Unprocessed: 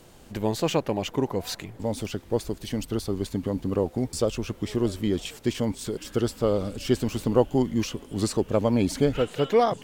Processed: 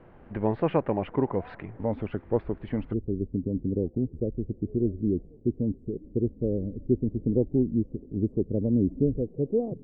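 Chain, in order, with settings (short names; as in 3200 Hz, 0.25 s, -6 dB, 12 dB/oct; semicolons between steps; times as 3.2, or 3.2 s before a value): inverse Chebyshev low-pass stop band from 6400 Hz, stop band 60 dB, from 2.92 s stop band from 1400 Hz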